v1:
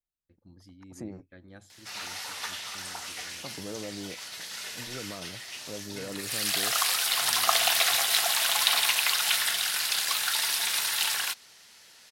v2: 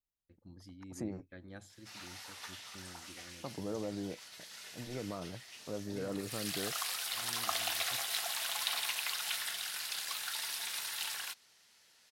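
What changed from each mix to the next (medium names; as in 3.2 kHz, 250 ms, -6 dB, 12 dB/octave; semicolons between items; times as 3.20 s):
background -11.5 dB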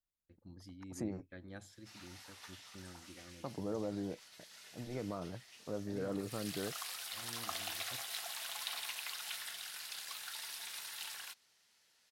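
background -6.5 dB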